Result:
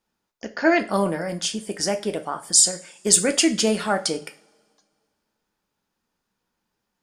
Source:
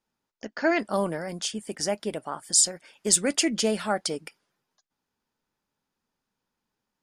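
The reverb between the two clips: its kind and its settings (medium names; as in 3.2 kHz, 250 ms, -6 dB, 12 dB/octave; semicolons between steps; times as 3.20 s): two-slope reverb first 0.35 s, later 2.1 s, from -28 dB, DRR 6.5 dB; trim +4 dB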